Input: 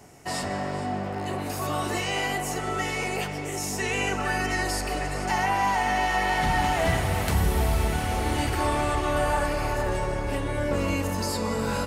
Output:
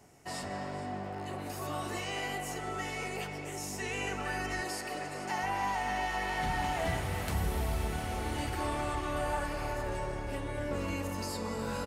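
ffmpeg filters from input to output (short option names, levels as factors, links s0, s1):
-filter_complex "[0:a]asettb=1/sr,asplit=3[s0][s1][s2];[s0]atrim=end=4.614[s3];[s1]atrim=start=4.61:end=5.43,asetpts=PTS-STARTPTS,afade=t=in:d=0.004:c=qsin,afade=t=out:st=0.816:d=0.004:c=qsin,highpass=140[s4];[s2]atrim=start=5.426[s5];[s3][s4]acrossfade=d=0.004:c1=hsin:c2=qsin[s6];[s6][s5]acrossfade=d=0.004:c1=qsin:c2=hsin,asplit=2[s7][s8];[s8]adelay=260,highpass=300,lowpass=3400,asoftclip=type=hard:threshold=0.0668,volume=0.355[s9];[s7][s9]amix=inputs=2:normalize=0,volume=0.355"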